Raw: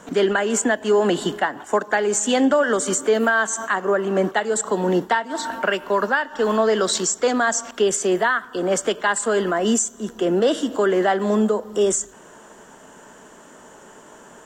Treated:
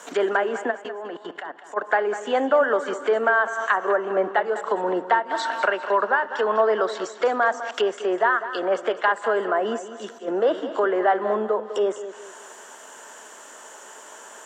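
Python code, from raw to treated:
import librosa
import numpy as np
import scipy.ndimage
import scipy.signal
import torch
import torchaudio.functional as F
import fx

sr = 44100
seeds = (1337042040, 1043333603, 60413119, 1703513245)

y = fx.env_lowpass_down(x, sr, base_hz=1300.0, full_db=-18.0)
y = scipy.signal.sosfilt(scipy.signal.butter(2, 460.0, 'highpass', fs=sr, output='sos'), y)
y = fx.tilt_eq(y, sr, slope=1.5)
y = fx.level_steps(y, sr, step_db=18, at=(0.7, 1.76), fade=0.02)
y = fx.auto_swell(y, sr, attack_ms=206.0, at=(9.62, 10.28))
y = fx.echo_feedback(y, sr, ms=201, feedback_pct=35, wet_db=-12.5)
y = F.gain(torch.from_numpy(y), 2.5).numpy()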